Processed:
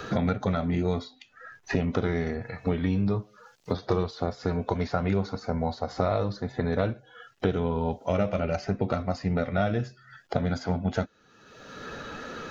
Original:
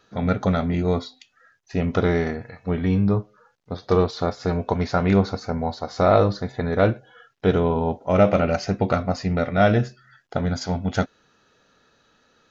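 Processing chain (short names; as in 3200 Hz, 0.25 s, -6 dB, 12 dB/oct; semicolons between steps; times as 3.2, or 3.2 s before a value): bin magnitudes rounded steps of 15 dB; three-band squash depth 100%; gain -6 dB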